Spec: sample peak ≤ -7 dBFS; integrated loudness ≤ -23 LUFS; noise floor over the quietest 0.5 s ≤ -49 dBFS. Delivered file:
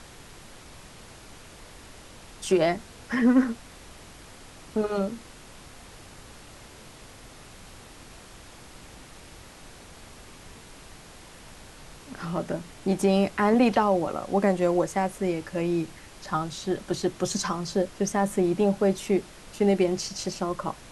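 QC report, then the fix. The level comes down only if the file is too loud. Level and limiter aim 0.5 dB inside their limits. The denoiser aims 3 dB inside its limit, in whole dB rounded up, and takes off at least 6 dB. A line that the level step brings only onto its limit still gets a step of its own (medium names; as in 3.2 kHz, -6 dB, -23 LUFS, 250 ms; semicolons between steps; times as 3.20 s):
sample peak -8.5 dBFS: pass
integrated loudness -26.0 LUFS: pass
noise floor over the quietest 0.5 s -47 dBFS: fail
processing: noise reduction 6 dB, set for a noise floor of -47 dBFS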